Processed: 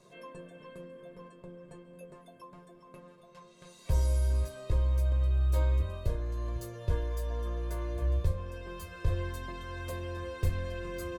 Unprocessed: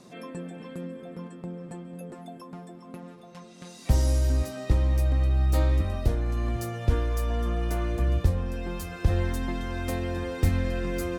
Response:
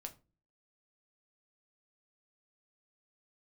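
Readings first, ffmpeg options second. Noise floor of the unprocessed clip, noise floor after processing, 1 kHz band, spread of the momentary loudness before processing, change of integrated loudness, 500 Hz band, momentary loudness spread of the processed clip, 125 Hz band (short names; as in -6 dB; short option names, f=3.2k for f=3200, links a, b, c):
-47 dBFS, -56 dBFS, -7.0 dB, 19 LU, -5.5 dB, -6.5 dB, 21 LU, -5.5 dB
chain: -filter_complex "[0:a]equalizer=f=5.3k:t=o:w=0.28:g=-3.5,aecho=1:1:1.9:0.71[a];[1:a]atrim=start_sample=2205,afade=t=out:st=0.16:d=0.01,atrim=end_sample=7497,asetrate=83790,aresample=44100[b];[a][b]afir=irnorm=-1:irlink=0,volume=1dB"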